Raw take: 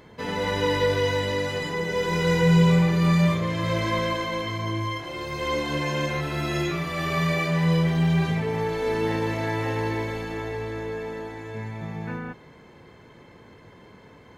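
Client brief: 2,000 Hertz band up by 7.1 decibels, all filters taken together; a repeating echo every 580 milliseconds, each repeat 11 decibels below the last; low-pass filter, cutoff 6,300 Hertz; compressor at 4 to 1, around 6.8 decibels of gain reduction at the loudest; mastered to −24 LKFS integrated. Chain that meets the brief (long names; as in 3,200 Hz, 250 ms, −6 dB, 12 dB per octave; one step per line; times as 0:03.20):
low-pass filter 6,300 Hz
parametric band 2,000 Hz +8 dB
downward compressor 4 to 1, threshold −22 dBFS
repeating echo 580 ms, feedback 28%, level −11 dB
level +1.5 dB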